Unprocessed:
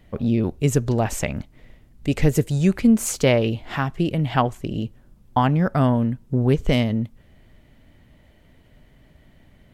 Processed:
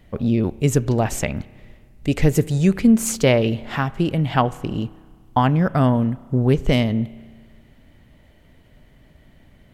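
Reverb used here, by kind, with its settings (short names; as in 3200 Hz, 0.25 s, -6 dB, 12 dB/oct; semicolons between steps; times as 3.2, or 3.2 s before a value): spring tank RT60 1.7 s, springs 31 ms, chirp 20 ms, DRR 19.5 dB; gain +1.5 dB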